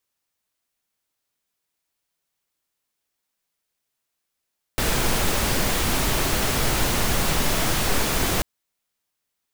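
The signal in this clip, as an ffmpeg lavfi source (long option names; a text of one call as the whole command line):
ffmpeg -f lavfi -i "anoisesrc=color=pink:amplitude=0.432:duration=3.64:sample_rate=44100:seed=1" out.wav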